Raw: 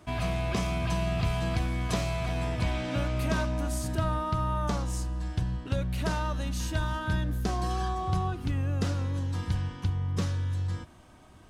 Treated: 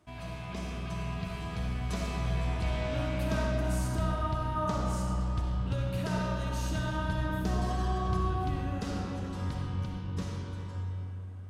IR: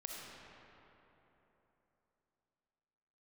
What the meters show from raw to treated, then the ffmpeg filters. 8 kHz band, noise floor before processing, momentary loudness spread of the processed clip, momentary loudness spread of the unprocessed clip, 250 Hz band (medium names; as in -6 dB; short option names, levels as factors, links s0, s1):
-5.0 dB, -53 dBFS, 7 LU, 3 LU, -1.5 dB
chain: -filter_complex "[0:a]dynaudnorm=f=280:g=13:m=2[s0];[1:a]atrim=start_sample=2205[s1];[s0][s1]afir=irnorm=-1:irlink=0,volume=0.473"